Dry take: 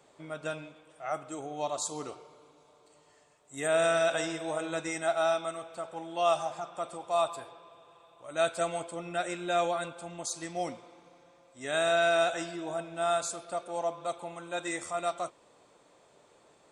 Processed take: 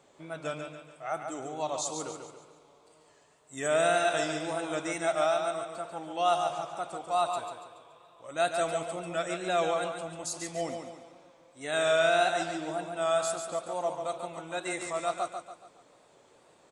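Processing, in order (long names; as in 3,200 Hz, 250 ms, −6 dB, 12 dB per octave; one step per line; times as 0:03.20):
tape wow and flutter 91 cents
repeating echo 142 ms, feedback 42%, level −6.5 dB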